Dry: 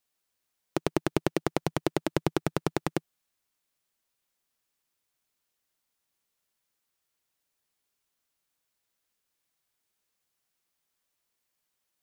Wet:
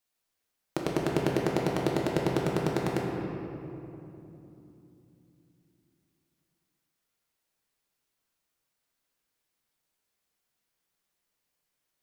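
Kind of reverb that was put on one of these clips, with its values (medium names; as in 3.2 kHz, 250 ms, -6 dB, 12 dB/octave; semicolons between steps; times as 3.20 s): simulated room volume 140 m³, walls hard, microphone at 0.53 m; trim -3 dB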